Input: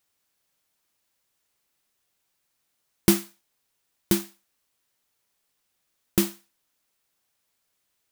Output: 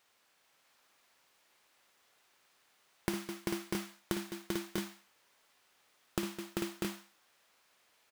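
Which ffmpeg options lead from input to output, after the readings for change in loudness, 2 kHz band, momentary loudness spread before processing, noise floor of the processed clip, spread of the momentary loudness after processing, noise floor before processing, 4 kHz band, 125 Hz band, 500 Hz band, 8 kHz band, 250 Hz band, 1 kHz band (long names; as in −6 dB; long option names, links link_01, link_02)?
−14.0 dB, −4.0 dB, 7 LU, −72 dBFS, 4 LU, −76 dBFS, −7.5 dB, −10.5 dB, −7.5 dB, −12.5 dB, −10.0 dB, −2.5 dB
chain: -filter_complex "[0:a]aecho=1:1:55|208|391|444|644|669:0.531|0.141|0.282|0.422|0.316|0.501,asplit=2[link_01][link_02];[link_02]highpass=frequency=720:poles=1,volume=17dB,asoftclip=type=tanh:threshold=-1.5dB[link_03];[link_01][link_03]amix=inputs=2:normalize=0,lowpass=frequency=2000:poles=1,volume=-6dB,acompressor=threshold=-33dB:ratio=10"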